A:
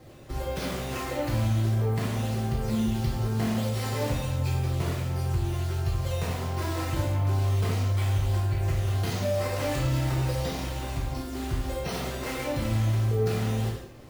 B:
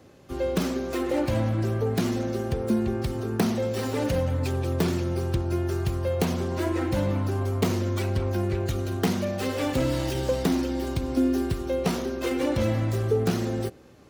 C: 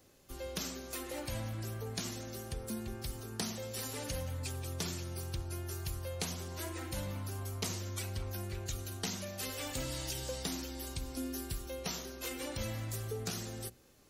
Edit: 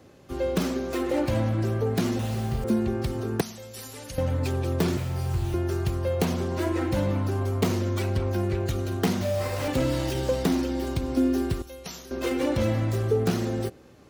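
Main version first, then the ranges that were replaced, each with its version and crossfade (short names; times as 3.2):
B
2.19–2.64 from A
3.41–4.18 from C
4.97–5.54 from A
9.21–9.68 from A
11.62–12.11 from C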